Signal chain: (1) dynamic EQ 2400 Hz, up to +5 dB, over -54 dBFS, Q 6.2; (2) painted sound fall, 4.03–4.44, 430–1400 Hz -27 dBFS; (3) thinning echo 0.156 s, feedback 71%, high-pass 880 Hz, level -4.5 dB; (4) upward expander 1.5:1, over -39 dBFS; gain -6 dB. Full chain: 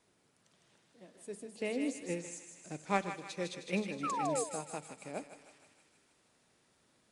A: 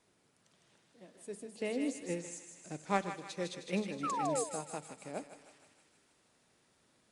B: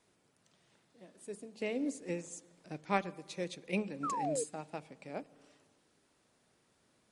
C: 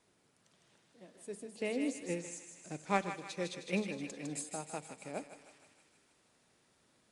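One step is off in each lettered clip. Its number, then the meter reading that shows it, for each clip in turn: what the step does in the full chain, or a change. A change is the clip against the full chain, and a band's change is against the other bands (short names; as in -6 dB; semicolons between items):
1, 2 kHz band -2.0 dB; 3, 4 kHz band -1.5 dB; 2, 1 kHz band -3.0 dB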